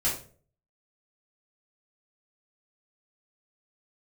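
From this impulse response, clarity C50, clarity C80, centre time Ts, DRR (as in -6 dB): 6.5 dB, 11.5 dB, 31 ms, -9.0 dB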